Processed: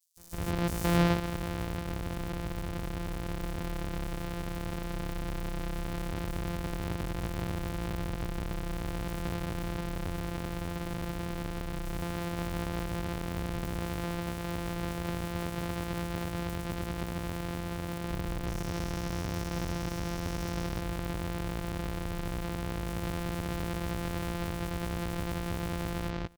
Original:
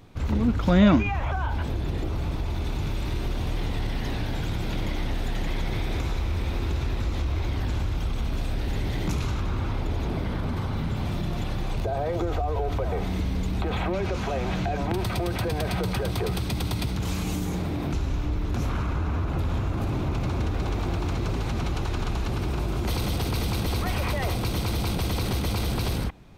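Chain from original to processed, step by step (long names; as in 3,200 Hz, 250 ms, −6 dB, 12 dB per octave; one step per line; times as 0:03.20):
samples sorted by size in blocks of 256 samples
0:18.47–0:20.64: parametric band 5,700 Hz +8.5 dB 0.53 octaves
multiband delay without the direct sound highs, lows 170 ms, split 5,600 Hz
level −8 dB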